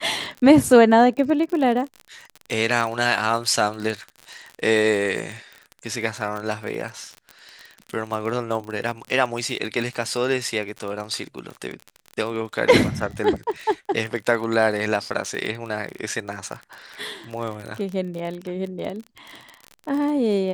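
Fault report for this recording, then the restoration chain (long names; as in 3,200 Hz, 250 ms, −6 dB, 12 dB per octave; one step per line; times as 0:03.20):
surface crackle 34 per second −28 dBFS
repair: click removal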